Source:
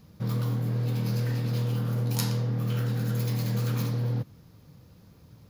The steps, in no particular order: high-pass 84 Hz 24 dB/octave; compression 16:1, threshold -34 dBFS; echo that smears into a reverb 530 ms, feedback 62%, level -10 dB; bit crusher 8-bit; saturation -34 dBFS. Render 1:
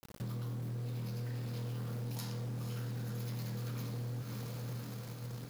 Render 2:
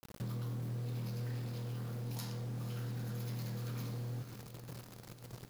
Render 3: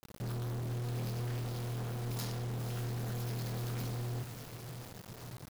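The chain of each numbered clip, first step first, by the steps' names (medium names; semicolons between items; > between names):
high-pass > bit crusher > echo that smears into a reverb > compression > saturation; high-pass > bit crusher > compression > saturation > echo that smears into a reverb; high-pass > saturation > compression > echo that smears into a reverb > bit crusher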